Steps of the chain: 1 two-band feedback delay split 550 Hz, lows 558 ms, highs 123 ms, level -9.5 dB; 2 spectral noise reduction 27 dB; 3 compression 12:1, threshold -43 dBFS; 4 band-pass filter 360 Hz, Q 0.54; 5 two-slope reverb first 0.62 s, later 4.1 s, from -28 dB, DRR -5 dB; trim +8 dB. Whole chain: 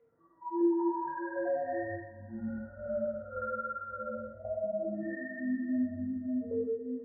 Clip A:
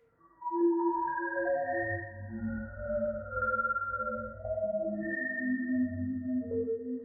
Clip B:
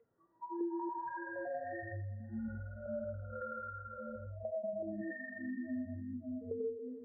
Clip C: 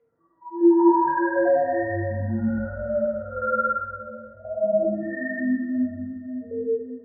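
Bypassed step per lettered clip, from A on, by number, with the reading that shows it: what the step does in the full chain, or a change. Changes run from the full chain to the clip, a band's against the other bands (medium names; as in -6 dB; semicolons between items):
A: 4, 125 Hz band +5.0 dB; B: 5, momentary loudness spread change -3 LU; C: 3, mean gain reduction 9.0 dB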